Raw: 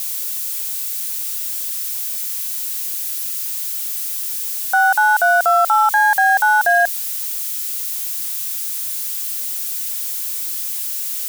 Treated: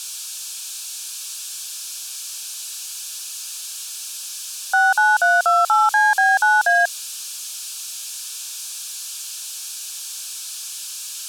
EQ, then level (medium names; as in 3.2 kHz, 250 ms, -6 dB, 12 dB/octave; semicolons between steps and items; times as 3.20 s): band-pass 560–6600 Hz; Butterworth band-stop 2 kHz, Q 3.8; treble shelf 3.1 kHz +7.5 dB; -2.0 dB